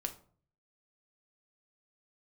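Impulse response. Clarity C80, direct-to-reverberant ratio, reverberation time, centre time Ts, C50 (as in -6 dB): 18.5 dB, 5.0 dB, 0.50 s, 8 ms, 13.5 dB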